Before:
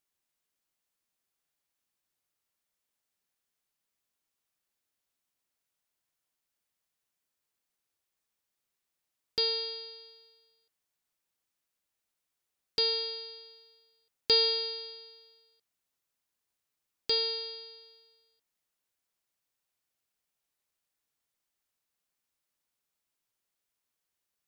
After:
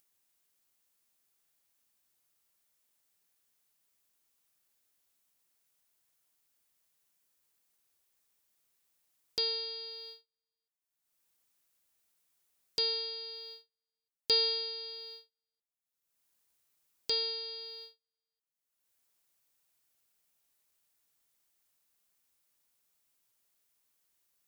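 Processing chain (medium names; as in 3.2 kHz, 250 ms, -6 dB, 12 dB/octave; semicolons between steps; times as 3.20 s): gate -54 dBFS, range -47 dB; treble shelf 6.9 kHz +7.5 dB; upward compressor, threshold -30 dBFS; trim -5 dB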